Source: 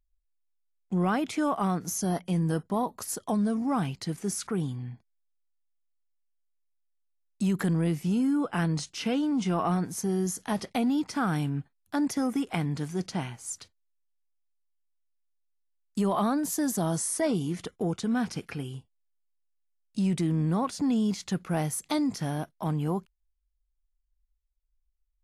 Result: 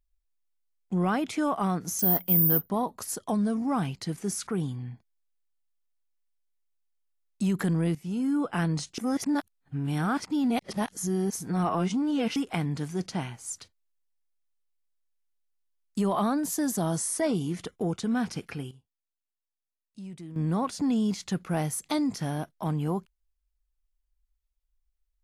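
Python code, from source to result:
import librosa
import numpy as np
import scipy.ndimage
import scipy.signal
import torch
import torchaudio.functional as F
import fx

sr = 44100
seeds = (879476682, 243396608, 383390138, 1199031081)

y = fx.resample_bad(x, sr, factor=3, down='filtered', up='zero_stuff', at=(1.99, 2.7))
y = fx.edit(y, sr, fx.fade_in_from(start_s=7.95, length_s=0.41, floor_db=-13.0),
    fx.reverse_span(start_s=8.98, length_s=3.38),
    fx.fade_down_up(start_s=18.32, length_s=2.43, db=-15.0, fade_s=0.39, curve='log'), tone=tone)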